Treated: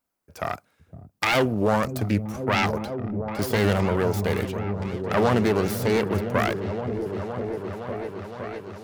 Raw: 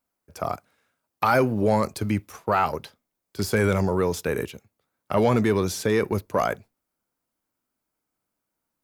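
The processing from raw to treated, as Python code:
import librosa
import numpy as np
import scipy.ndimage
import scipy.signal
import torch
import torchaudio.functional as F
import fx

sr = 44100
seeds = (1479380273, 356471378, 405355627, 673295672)

y = fx.self_delay(x, sr, depth_ms=0.34)
y = fx.echo_opening(y, sr, ms=513, hz=200, octaves=1, feedback_pct=70, wet_db=-3)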